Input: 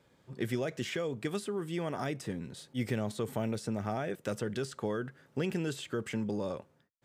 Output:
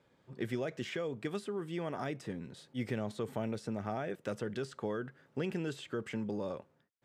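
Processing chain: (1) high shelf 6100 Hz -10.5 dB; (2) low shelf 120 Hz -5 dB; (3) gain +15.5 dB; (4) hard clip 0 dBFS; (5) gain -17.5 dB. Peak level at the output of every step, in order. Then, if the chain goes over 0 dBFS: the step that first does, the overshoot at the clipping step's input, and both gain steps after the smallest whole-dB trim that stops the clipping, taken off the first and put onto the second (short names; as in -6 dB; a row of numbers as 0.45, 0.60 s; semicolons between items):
-20.0, -20.0, -4.5, -4.5, -22.0 dBFS; no overload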